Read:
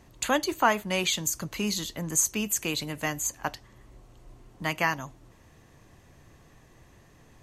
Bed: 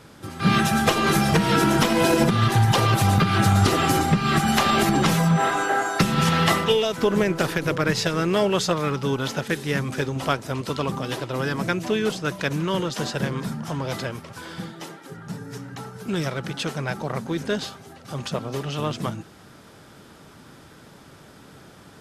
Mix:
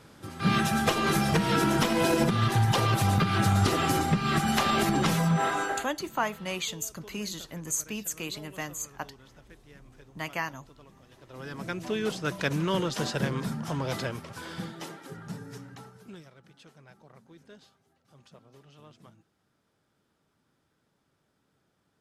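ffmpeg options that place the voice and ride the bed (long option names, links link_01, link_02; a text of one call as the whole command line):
ffmpeg -i stem1.wav -i stem2.wav -filter_complex "[0:a]adelay=5550,volume=-6dB[link_01];[1:a]volume=20.5dB,afade=type=out:start_time=5.63:duration=0.28:silence=0.0668344,afade=type=in:start_time=11.17:duration=1.3:silence=0.0501187,afade=type=out:start_time=15.06:duration=1.18:silence=0.0668344[link_02];[link_01][link_02]amix=inputs=2:normalize=0" out.wav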